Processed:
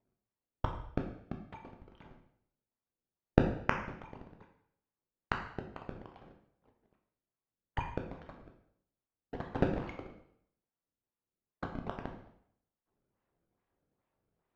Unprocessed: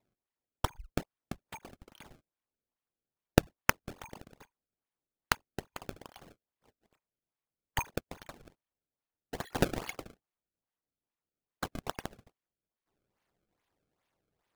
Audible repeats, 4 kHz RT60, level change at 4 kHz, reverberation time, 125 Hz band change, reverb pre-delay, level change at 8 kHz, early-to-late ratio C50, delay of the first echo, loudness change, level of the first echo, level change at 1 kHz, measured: no echo audible, 0.65 s, −12.0 dB, 0.70 s, +1.0 dB, 6 ms, below −20 dB, 7.0 dB, no echo audible, −2.0 dB, no echo audible, −2.0 dB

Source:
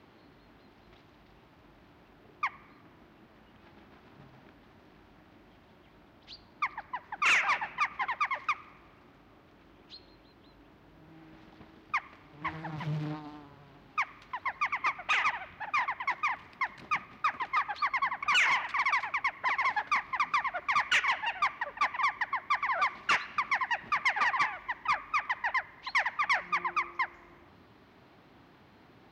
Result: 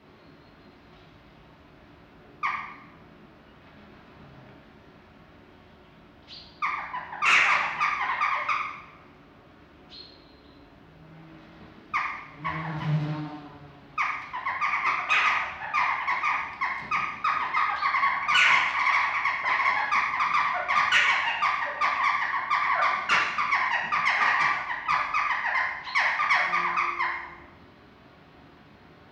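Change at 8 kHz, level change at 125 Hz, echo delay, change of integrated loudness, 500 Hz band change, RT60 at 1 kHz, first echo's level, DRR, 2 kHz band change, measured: +3.5 dB, +7.5 dB, no echo audible, +6.0 dB, +6.5 dB, 0.85 s, no echo audible, −4.5 dB, +6.0 dB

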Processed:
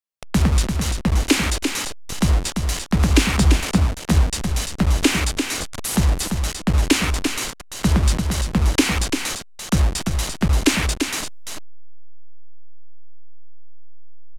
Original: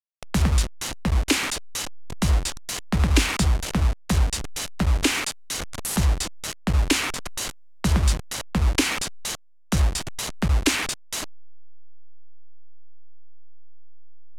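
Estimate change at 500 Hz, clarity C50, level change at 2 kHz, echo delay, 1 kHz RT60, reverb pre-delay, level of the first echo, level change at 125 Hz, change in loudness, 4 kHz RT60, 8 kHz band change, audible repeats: +5.0 dB, no reverb audible, +3.0 dB, 342 ms, no reverb audible, no reverb audible, −6.0 dB, +4.0 dB, +4.0 dB, no reverb audible, +3.0 dB, 1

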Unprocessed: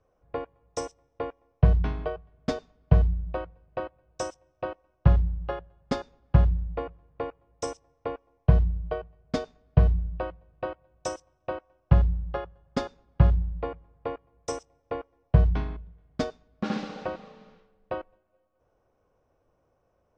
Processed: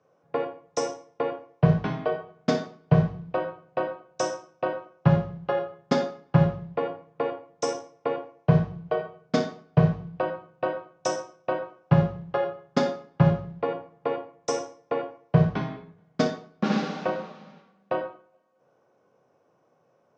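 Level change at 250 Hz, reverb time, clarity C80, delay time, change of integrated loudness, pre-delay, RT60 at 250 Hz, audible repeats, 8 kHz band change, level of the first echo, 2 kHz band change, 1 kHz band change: +6.5 dB, 0.45 s, 13.0 dB, no echo audible, +1.5 dB, 24 ms, 0.50 s, no echo audible, +5.0 dB, no echo audible, +6.0 dB, +6.0 dB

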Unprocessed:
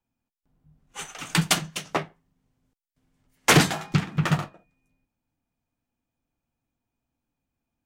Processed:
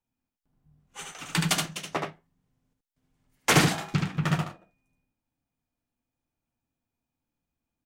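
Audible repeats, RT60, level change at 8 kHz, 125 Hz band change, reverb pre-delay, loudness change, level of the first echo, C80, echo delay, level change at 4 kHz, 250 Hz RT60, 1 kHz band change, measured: 1, no reverb audible, −3.0 dB, −2.5 dB, no reverb audible, −3.0 dB, −3.5 dB, no reverb audible, 74 ms, −3.0 dB, no reverb audible, −2.5 dB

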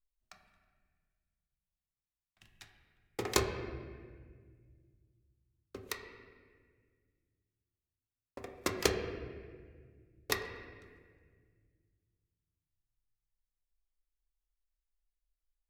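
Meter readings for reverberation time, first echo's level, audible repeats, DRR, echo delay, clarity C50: 1.7 s, no echo audible, no echo audible, 3.0 dB, no echo audible, 6.5 dB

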